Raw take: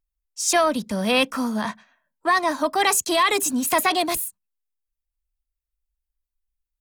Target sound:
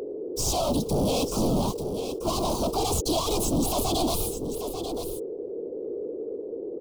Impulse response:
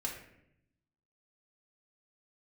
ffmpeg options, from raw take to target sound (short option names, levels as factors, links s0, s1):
-filter_complex "[0:a]aeval=exprs='if(lt(val(0),0),0.251*val(0),val(0))':c=same,acrossover=split=4300[s0][s1];[s1]acompressor=threshold=0.0158:ratio=4:attack=1:release=60[s2];[s0][s2]amix=inputs=2:normalize=0,acrusher=bits=7:mix=0:aa=0.000001,apsyclip=7.94,aeval=exprs='val(0)+0.0708*sin(2*PI*420*n/s)':c=same,afftfilt=real='hypot(re,im)*cos(2*PI*random(0))':imag='hypot(re,im)*sin(2*PI*random(1))':win_size=512:overlap=0.75,asoftclip=type=tanh:threshold=0.112,asuperstop=centerf=1800:order=4:qfactor=0.61,asplit=2[s3][s4];[s4]aecho=0:1:890:0.335[s5];[s3][s5]amix=inputs=2:normalize=0,volume=0.841"